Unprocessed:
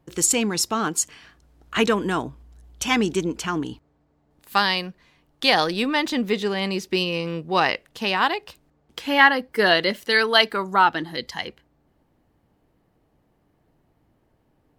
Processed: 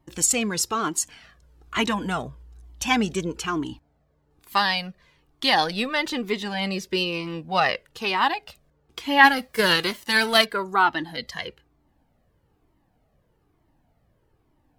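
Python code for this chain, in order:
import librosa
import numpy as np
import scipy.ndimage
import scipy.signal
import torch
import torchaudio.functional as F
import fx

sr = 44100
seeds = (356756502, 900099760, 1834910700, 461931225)

y = fx.envelope_flatten(x, sr, power=0.6, at=(9.23, 10.44), fade=0.02)
y = fx.comb_cascade(y, sr, direction='falling', hz=1.1)
y = F.gain(torch.from_numpy(y), 3.0).numpy()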